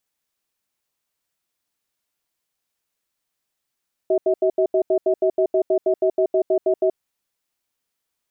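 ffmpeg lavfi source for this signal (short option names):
-f lavfi -i "aevalsrc='0.133*(sin(2*PI*378*t)+sin(2*PI*639*t))*clip(min(mod(t,0.16),0.08-mod(t,0.16))/0.005,0,1)':d=2.88:s=44100"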